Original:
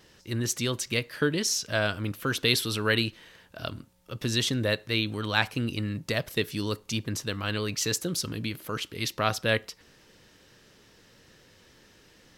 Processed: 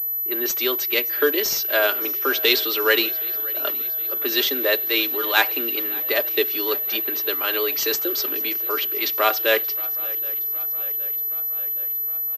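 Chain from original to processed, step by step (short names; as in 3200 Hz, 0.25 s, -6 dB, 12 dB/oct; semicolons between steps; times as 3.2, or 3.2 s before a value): block floating point 5-bit; steep high-pass 280 Hz 72 dB/oct; crackle 200/s -44 dBFS; low-pass opened by the level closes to 960 Hz, open at -27.5 dBFS; comb 5 ms, depth 57%; swung echo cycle 0.769 s, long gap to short 3:1, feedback 59%, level -21 dB; pulse-width modulation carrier 12000 Hz; gain +6 dB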